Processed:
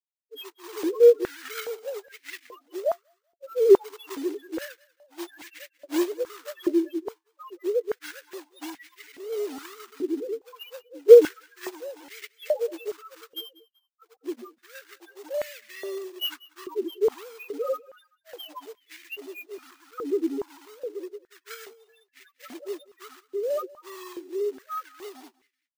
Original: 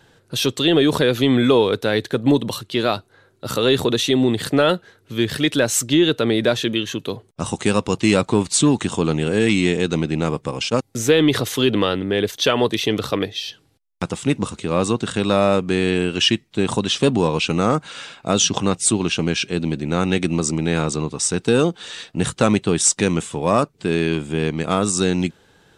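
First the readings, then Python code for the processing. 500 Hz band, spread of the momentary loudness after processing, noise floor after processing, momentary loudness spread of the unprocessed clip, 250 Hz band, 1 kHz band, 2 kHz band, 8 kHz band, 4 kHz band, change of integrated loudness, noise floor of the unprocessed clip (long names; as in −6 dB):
−3.5 dB, 23 LU, −77 dBFS, 8 LU, −15.0 dB, −16.0 dB, −17.0 dB, below −20 dB, −18.0 dB, −6.0 dB, −58 dBFS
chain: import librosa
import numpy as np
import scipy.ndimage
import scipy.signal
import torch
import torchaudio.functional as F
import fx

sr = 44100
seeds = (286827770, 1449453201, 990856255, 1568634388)

y = fx.sine_speech(x, sr)
y = fx.quant_dither(y, sr, seeds[0], bits=6, dither='none')
y = fx.spec_topn(y, sr, count=1)
y = fx.quant_float(y, sr, bits=2)
y = fx.echo_feedback(y, sr, ms=191, feedback_pct=34, wet_db=-22)
y = np.repeat(y[::3], 3)[:len(y)]
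y = fx.filter_held_highpass(y, sr, hz=2.4, low_hz=370.0, high_hz=2000.0)
y = y * librosa.db_to_amplitude(-5.5)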